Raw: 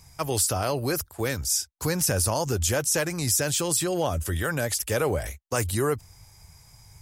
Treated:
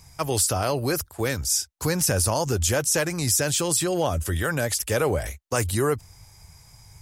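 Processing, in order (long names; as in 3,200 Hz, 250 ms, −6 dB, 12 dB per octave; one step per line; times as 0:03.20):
parametric band 15,000 Hz −4 dB 0.37 octaves
level +2 dB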